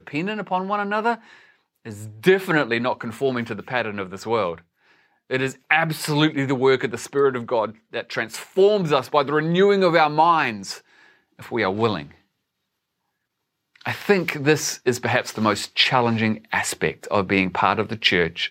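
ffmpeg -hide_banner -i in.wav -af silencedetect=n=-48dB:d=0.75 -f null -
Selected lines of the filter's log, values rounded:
silence_start: 12.18
silence_end: 13.76 | silence_duration: 1.58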